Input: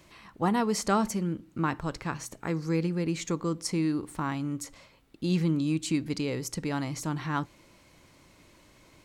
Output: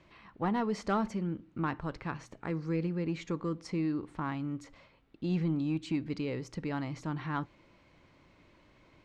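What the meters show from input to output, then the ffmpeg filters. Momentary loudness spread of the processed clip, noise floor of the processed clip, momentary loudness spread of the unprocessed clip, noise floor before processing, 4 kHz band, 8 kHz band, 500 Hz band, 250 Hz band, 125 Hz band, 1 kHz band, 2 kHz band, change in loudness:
7 LU, −64 dBFS, 8 LU, −59 dBFS, −10.0 dB, below −15 dB, −4.5 dB, −4.0 dB, −4.0 dB, −5.0 dB, −5.0 dB, −4.5 dB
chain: -af "lowpass=3200,asoftclip=type=tanh:threshold=-17dB,volume=-3.5dB"

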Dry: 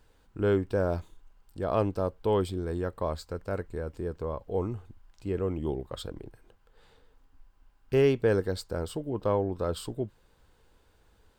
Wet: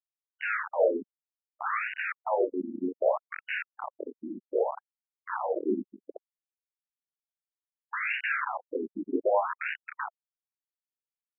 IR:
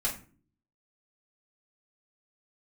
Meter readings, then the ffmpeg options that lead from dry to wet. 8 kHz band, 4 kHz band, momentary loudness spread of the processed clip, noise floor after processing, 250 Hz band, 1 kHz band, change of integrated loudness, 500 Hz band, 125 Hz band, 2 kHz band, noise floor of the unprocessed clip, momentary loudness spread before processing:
below −30 dB, −4.5 dB, 13 LU, below −85 dBFS, −3.5 dB, +5.0 dB, −0.5 dB, −2.0 dB, below −25 dB, +10.5 dB, −65 dBFS, 12 LU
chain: -filter_complex "[1:a]atrim=start_sample=2205,atrim=end_sample=3528[link_01];[0:a][link_01]afir=irnorm=-1:irlink=0,acrusher=bits=3:mix=0:aa=0.000001,afftfilt=real='re*between(b*sr/1024,250*pow(2100/250,0.5+0.5*sin(2*PI*0.64*pts/sr))/1.41,250*pow(2100/250,0.5+0.5*sin(2*PI*0.64*pts/sr))*1.41)':imag='im*between(b*sr/1024,250*pow(2100/250,0.5+0.5*sin(2*PI*0.64*pts/sr))/1.41,250*pow(2100/250,0.5+0.5*sin(2*PI*0.64*pts/sr))*1.41)':win_size=1024:overlap=0.75,volume=1.5dB"

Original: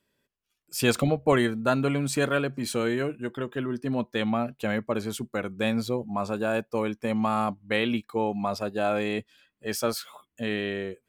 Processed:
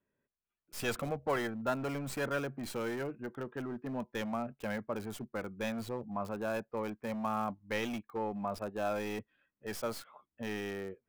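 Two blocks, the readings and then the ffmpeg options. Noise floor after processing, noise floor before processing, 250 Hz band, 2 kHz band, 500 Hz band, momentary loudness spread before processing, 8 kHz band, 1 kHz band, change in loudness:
below −85 dBFS, −81 dBFS, −10.5 dB, −9.0 dB, −9.5 dB, 8 LU, −11.5 dB, −8.0 dB, −10.0 dB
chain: -filter_complex "[0:a]acrossover=split=540|2300[link_01][link_02][link_03];[link_01]asoftclip=type=hard:threshold=-29dB[link_04];[link_03]acrusher=bits=4:dc=4:mix=0:aa=0.000001[link_05];[link_04][link_02][link_05]amix=inputs=3:normalize=0,volume=-7.5dB"

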